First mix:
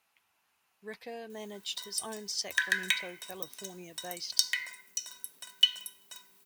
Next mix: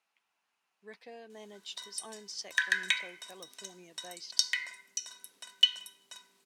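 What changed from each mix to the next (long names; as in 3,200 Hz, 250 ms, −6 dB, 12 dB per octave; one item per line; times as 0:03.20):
speech −6.0 dB
master: add band-pass filter 180–8,000 Hz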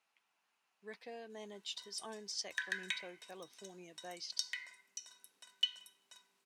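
background −10.5 dB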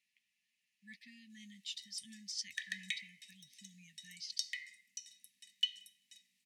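master: add linear-phase brick-wall band-stop 260–1,700 Hz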